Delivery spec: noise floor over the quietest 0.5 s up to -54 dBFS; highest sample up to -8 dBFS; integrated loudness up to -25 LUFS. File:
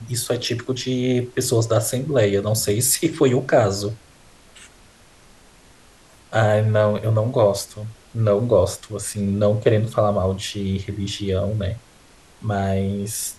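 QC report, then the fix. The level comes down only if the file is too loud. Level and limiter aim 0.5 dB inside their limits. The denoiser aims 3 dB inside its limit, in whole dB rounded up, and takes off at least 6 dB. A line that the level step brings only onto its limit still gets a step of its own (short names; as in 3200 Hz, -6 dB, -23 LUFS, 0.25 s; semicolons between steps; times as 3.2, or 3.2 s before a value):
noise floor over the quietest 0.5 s -50 dBFS: fail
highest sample -4.0 dBFS: fail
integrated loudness -21.0 LUFS: fail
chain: gain -4.5 dB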